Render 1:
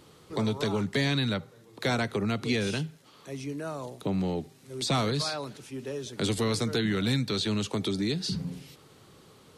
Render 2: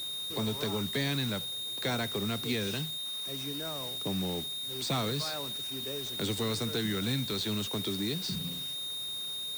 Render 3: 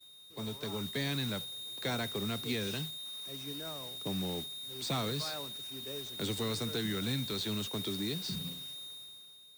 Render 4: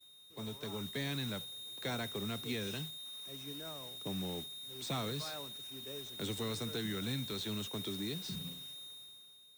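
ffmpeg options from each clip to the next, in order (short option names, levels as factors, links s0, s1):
-af "aeval=exprs='val(0)+0.0251*sin(2*PI*3700*n/s)':c=same,acrusher=bits=5:mix=0:aa=0.000001,volume=0.562"
-af "dynaudnorm=f=140:g=11:m=1.68,agate=range=0.0224:threshold=0.0316:ratio=3:detection=peak,volume=0.422"
-af "bandreject=f=4600:w=7.5,volume=0.668"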